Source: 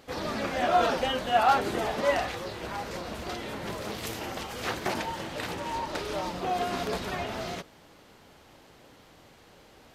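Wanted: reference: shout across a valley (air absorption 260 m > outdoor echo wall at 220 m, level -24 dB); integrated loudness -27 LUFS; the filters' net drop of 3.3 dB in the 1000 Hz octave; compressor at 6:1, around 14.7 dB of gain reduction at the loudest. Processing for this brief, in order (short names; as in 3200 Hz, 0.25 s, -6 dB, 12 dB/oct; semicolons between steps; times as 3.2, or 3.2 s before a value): bell 1000 Hz -3.5 dB; compressor 6:1, threshold -36 dBFS; air absorption 260 m; outdoor echo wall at 220 m, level -24 dB; gain +14 dB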